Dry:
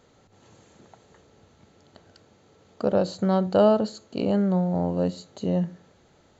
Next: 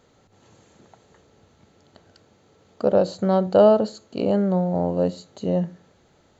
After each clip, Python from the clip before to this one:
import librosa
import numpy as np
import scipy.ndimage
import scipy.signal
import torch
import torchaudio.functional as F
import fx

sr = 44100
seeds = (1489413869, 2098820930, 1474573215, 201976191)

y = fx.dynamic_eq(x, sr, hz=550.0, q=1.0, threshold_db=-32.0, ratio=4.0, max_db=5)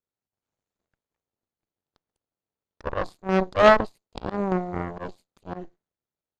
y = fx.cheby_harmonics(x, sr, harmonics=(4, 7), levels_db=(-8, -17), full_scale_db=-4.5)
y = fx.auto_swell(y, sr, attack_ms=139.0)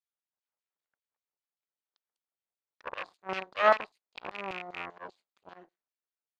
y = fx.rattle_buzz(x, sr, strikes_db=-33.0, level_db=-20.0)
y = fx.filter_lfo_bandpass(y, sr, shape='saw_down', hz=5.1, low_hz=870.0, high_hz=4200.0, q=0.96)
y = y * 10.0 ** (-4.0 / 20.0)